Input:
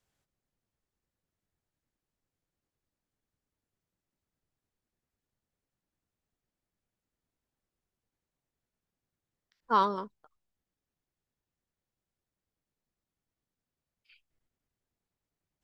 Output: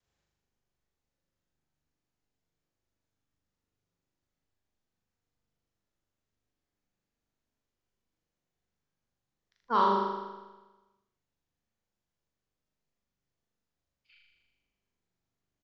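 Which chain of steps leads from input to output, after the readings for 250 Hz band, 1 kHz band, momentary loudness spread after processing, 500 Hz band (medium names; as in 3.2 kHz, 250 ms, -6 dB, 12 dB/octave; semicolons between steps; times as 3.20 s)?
+2.5 dB, +2.0 dB, 15 LU, +3.0 dB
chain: vibrato 1.9 Hz 36 cents; flutter echo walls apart 6.9 m, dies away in 1.2 s; resampled via 16 kHz; trim -3 dB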